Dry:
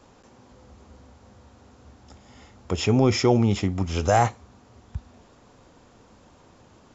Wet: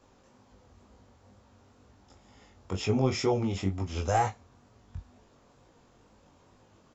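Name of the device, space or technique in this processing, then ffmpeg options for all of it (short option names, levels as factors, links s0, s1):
double-tracked vocal: -filter_complex "[0:a]asplit=2[s0][s1];[s1]adelay=21,volume=0.282[s2];[s0][s2]amix=inputs=2:normalize=0,flanger=delay=18.5:depth=4.4:speed=2.1,volume=0.596"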